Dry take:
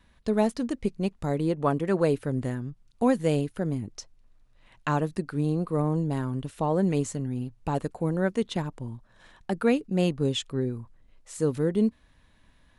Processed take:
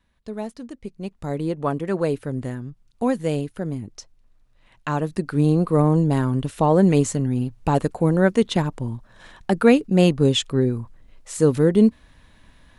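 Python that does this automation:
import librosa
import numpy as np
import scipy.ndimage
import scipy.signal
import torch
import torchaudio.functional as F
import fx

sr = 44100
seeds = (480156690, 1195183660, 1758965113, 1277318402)

y = fx.gain(x, sr, db=fx.line((0.84, -7.0), (1.34, 1.0), (4.89, 1.0), (5.42, 8.5)))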